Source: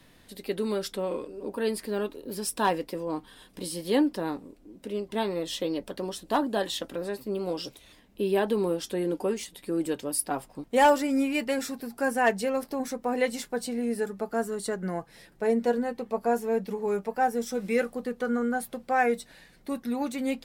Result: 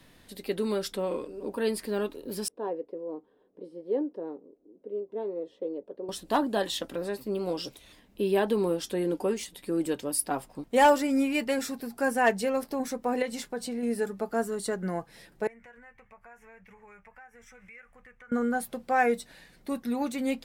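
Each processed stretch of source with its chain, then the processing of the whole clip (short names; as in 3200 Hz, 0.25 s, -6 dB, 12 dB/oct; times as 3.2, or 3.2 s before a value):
2.48–6.09 band-pass 440 Hz, Q 3 + mismatched tape noise reduction decoder only
13.22–13.83 high shelf 8100 Hz -4.5 dB + compressor 2:1, threshold -31 dBFS
15.47–18.32 EQ curve 100 Hz 0 dB, 240 Hz -26 dB, 390 Hz -25 dB, 2200 Hz +2 dB, 4300 Hz -28 dB, 6100 Hz -15 dB, 12000 Hz -23 dB + compressor 4:1, threshold -49 dBFS
whole clip: dry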